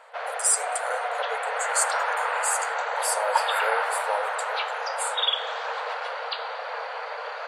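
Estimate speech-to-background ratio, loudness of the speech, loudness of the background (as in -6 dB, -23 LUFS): -1.5 dB, -29.0 LUFS, -27.5 LUFS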